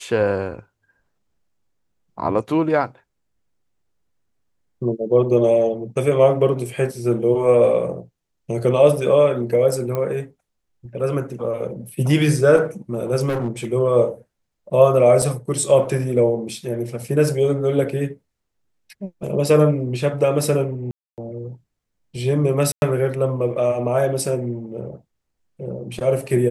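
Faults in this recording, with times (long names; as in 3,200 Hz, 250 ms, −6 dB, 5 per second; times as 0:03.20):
0:09.95: click −13 dBFS
0:13.28–0:13.65: clipping −19 dBFS
0:15.22: drop-out 4.4 ms
0:20.91–0:21.18: drop-out 268 ms
0:22.72–0:22.82: drop-out 101 ms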